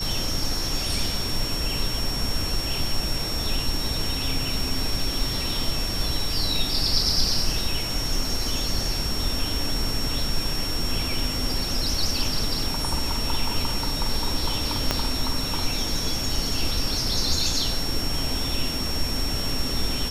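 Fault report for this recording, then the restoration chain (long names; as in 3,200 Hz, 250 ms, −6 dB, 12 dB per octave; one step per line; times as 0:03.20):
whistle 5,500 Hz −29 dBFS
0:14.91: click −6 dBFS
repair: click removal
notch filter 5,500 Hz, Q 30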